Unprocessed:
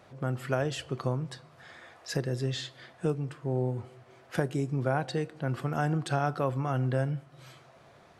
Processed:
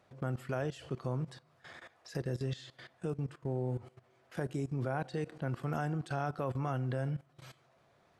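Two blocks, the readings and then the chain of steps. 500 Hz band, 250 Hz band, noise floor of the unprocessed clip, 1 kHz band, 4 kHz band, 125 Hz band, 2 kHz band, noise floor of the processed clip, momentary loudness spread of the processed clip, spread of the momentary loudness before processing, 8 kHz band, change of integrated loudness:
-6.5 dB, -5.5 dB, -57 dBFS, -6.5 dB, -11.0 dB, -5.5 dB, -7.0 dB, -69 dBFS, 17 LU, 12 LU, -11.0 dB, -6.0 dB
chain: level held to a coarse grid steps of 17 dB

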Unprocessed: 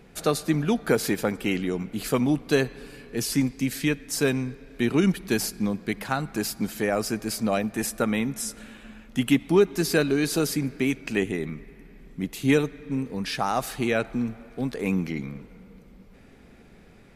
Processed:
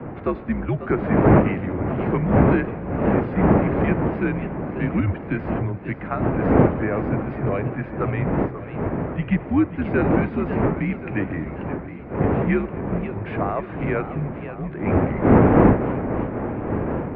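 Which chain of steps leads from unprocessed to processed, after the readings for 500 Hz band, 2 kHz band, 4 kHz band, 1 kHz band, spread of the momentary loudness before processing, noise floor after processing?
+4.5 dB, +1.0 dB, under -15 dB, +7.5 dB, 10 LU, -35 dBFS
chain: wind noise 430 Hz -21 dBFS; mistuned SSB -92 Hz 160–2400 Hz; modulated delay 537 ms, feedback 62%, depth 207 cents, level -12 dB

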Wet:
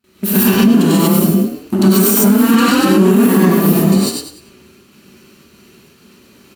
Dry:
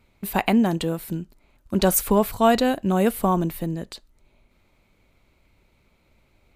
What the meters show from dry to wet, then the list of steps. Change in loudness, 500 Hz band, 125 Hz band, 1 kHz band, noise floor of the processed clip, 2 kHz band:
+11.0 dB, +7.5 dB, +12.5 dB, +4.0 dB, -48 dBFS, +10.0 dB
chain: comb filter that takes the minimum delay 0.7 ms; gate with hold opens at -53 dBFS; small resonant body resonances 210/370 Hz, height 13 dB, ringing for 90 ms; on a send: frequency-shifting echo 97 ms, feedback 34%, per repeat +31 Hz, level -3 dB; on the sum: compression 12:1, threshold -19 dBFS, peak gain reduction 15.5 dB; high-pass 130 Hz 12 dB/octave; treble shelf 3.7 kHz +9 dB; gated-style reverb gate 170 ms rising, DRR -8 dB; loudness maximiser +8 dB; trim -1 dB

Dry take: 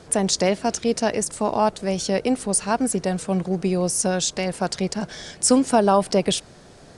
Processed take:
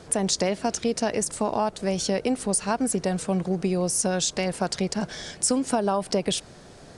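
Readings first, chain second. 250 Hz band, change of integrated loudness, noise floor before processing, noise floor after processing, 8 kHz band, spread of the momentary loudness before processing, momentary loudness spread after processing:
-3.5 dB, -3.5 dB, -47 dBFS, -47 dBFS, -2.5 dB, 8 LU, 4 LU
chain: compression, threshold -20 dBFS, peak gain reduction 8.5 dB

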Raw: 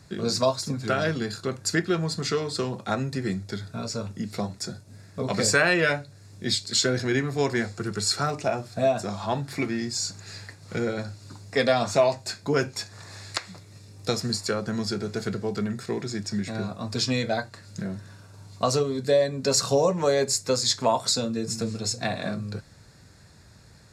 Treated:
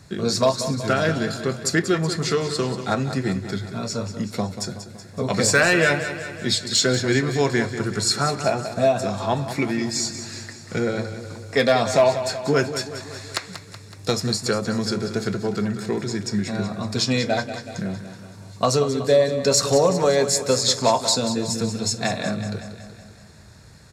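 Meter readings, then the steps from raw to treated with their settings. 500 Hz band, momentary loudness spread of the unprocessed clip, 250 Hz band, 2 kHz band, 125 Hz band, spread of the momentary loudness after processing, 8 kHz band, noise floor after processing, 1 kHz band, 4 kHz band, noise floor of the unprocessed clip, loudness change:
+4.5 dB, 12 LU, +4.5 dB, +4.0 dB, +4.5 dB, 13 LU, +4.5 dB, -43 dBFS, +4.5 dB, +4.0 dB, -51 dBFS, +4.0 dB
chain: band-stop 4.8 kHz, Q 24; hard clipper -13 dBFS, distortion -26 dB; on a send: feedback delay 187 ms, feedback 58%, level -11 dB; on the sum: trim +4 dB

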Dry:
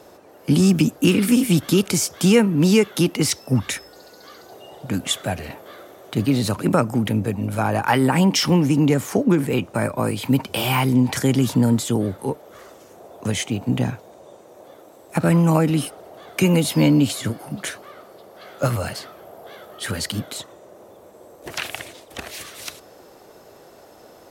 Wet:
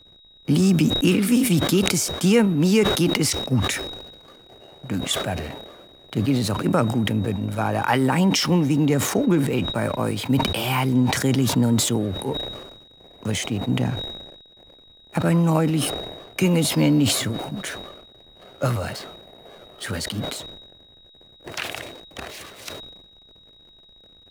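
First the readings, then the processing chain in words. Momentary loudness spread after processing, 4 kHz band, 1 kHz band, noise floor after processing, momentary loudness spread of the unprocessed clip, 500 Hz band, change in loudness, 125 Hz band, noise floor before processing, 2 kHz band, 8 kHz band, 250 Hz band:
17 LU, +1.5 dB, -1.0 dB, -52 dBFS, 16 LU, -1.5 dB, -1.5 dB, -1.5 dB, -47 dBFS, -0.5 dB, 0.0 dB, -2.0 dB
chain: hysteresis with a dead band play -34.5 dBFS; whistle 3.8 kHz -47 dBFS; decay stretcher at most 48 dB/s; trim -2.5 dB

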